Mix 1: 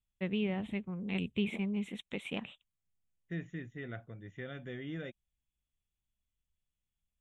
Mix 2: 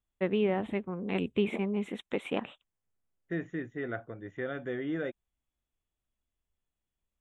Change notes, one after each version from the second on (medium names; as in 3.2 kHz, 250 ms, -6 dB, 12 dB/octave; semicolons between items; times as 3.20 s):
master: add high-order bell 680 Hz +10 dB 3 oct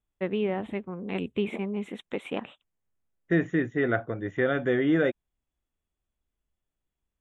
second voice +10.5 dB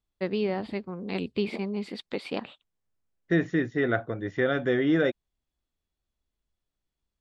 master: remove Butterworth band-stop 4.7 kHz, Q 1.5